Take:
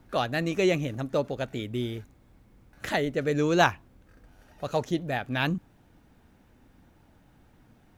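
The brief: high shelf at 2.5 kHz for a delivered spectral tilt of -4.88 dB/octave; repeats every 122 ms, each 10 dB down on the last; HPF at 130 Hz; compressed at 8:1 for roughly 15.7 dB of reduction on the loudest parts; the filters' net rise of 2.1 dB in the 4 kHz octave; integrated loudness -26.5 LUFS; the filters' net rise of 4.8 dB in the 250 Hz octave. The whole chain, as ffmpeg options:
-af "highpass=130,equalizer=f=250:t=o:g=7.5,highshelf=f=2500:g=-3.5,equalizer=f=4000:t=o:g=5.5,acompressor=threshold=0.0251:ratio=8,aecho=1:1:122|244|366|488:0.316|0.101|0.0324|0.0104,volume=3.16"

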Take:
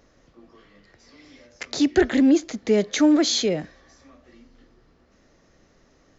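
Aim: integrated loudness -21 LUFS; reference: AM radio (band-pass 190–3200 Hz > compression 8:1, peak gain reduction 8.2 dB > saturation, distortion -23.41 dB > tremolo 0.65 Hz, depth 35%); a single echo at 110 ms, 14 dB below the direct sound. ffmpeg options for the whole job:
-af "highpass=190,lowpass=3200,aecho=1:1:110:0.2,acompressor=threshold=0.1:ratio=8,asoftclip=threshold=0.178,tremolo=f=0.65:d=0.35,volume=2.37"

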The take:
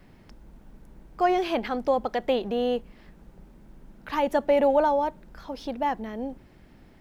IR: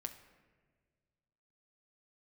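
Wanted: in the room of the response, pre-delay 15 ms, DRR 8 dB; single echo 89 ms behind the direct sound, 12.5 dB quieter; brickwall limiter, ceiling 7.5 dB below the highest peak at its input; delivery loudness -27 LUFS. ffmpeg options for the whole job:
-filter_complex "[0:a]alimiter=limit=0.119:level=0:latency=1,aecho=1:1:89:0.237,asplit=2[s0][s1];[1:a]atrim=start_sample=2205,adelay=15[s2];[s1][s2]afir=irnorm=-1:irlink=0,volume=0.531[s3];[s0][s3]amix=inputs=2:normalize=0,volume=1.26"

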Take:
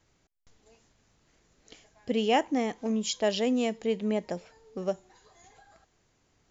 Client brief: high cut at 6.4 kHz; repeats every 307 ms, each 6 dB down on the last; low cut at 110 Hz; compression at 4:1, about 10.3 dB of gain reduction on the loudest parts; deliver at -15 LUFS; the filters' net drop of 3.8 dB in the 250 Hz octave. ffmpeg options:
-af "highpass=110,lowpass=6400,equalizer=f=250:t=o:g=-4,acompressor=threshold=0.0224:ratio=4,aecho=1:1:307|614|921|1228|1535|1842:0.501|0.251|0.125|0.0626|0.0313|0.0157,volume=12.6"

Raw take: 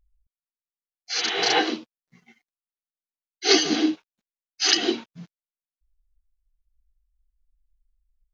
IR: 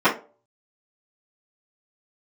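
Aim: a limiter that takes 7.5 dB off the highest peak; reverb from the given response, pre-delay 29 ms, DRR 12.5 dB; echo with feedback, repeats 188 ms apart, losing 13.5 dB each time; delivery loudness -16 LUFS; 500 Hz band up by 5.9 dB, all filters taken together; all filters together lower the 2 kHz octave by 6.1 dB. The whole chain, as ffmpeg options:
-filter_complex "[0:a]equalizer=f=500:t=o:g=8.5,equalizer=f=2000:t=o:g=-8.5,alimiter=limit=0.299:level=0:latency=1,aecho=1:1:188|376:0.211|0.0444,asplit=2[s0][s1];[1:a]atrim=start_sample=2205,adelay=29[s2];[s1][s2]afir=irnorm=-1:irlink=0,volume=0.0211[s3];[s0][s3]amix=inputs=2:normalize=0,volume=2.24"

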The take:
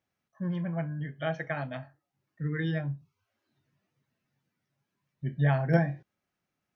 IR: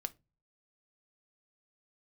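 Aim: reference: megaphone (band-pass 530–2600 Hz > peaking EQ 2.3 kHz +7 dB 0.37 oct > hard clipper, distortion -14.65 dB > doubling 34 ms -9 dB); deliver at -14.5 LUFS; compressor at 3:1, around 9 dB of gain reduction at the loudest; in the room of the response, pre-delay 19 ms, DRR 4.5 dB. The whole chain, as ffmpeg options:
-filter_complex "[0:a]acompressor=threshold=0.0316:ratio=3,asplit=2[s0][s1];[1:a]atrim=start_sample=2205,adelay=19[s2];[s1][s2]afir=irnorm=-1:irlink=0,volume=0.708[s3];[s0][s3]amix=inputs=2:normalize=0,highpass=530,lowpass=2600,equalizer=f=2300:t=o:w=0.37:g=7,asoftclip=type=hard:threshold=0.0299,asplit=2[s4][s5];[s5]adelay=34,volume=0.355[s6];[s4][s6]amix=inputs=2:normalize=0,volume=20"

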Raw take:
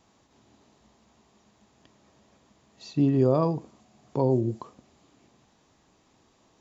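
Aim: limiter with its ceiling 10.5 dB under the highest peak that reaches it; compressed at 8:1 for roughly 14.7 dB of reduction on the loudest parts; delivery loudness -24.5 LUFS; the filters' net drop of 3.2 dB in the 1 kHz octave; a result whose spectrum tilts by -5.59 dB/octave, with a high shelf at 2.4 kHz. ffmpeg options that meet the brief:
-af "equalizer=f=1000:t=o:g=-4.5,highshelf=f=2400:g=4,acompressor=threshold=0.0224:ratio=8,volume=9.44,alimiter=limit=0.211:level=0:latency=1"

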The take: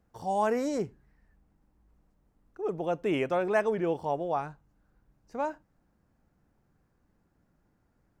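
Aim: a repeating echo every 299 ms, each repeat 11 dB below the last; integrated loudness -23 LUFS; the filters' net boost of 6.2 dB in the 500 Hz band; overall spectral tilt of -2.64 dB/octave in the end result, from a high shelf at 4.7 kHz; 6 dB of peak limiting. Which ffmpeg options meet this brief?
-af "equalizer=f=500:t=o:g=7.5,highshelf=f=4700:g=8,alimiter=limit=0.133:level=0:latency=1,aecho=1:1:299|598|897:0.282|0.0789|0.0221,volume=1.68"

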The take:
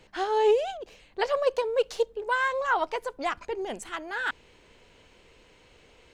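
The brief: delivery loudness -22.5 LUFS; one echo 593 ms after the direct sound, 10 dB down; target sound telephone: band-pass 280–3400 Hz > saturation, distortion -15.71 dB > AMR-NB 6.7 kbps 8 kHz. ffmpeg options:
-af "highpass=280,lowpass=3400,aecho=1:1:593:0.316,asoftclip=threshold=0.106,volume=2.66" -ar 8000 -c:a libopencore_amrnb -b:a 6700

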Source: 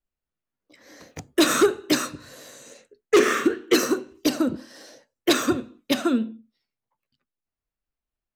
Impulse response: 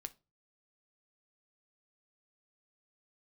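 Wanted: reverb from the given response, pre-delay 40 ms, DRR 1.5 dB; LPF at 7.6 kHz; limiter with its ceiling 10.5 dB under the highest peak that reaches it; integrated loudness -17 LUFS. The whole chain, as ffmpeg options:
-filter_complex "[0:a]lowpass=7600,alimiter=limit=0.106:level=0:latency=1,asplit=2[s0][s1];[1:a]atrim=start_sample=2205,adelay=40[s2];[s1][s2]afir=irnorm=-1:irlink=0,volume=1.33[s3];[s0][s3]amix=inputs=2:normalize=0,volume=3.35"

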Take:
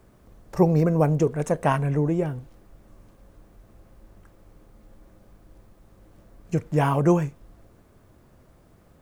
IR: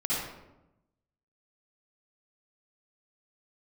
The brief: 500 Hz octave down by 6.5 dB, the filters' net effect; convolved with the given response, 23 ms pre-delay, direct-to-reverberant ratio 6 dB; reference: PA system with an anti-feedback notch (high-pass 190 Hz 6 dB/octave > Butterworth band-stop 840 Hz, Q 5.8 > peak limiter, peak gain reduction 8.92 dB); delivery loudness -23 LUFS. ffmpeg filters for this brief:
-filter_complex "[0:a]equalizer=f=500:t=o:g=-7.5,asplit=2[s0][s1];[1:a]atrim=start_sample=2205,adelay=23[s2];[s1][s2]afir=irnorm=-1:irlink=0,volume=0.188[s3];[s0][s3]amix=inputs=2:normalize=0,highpass=f=190:p=1,asuperstop=centerf=840:order=8:qfactor=5.8,volume=2.11,alimiter=limit=0.237:level=0:latency=1"

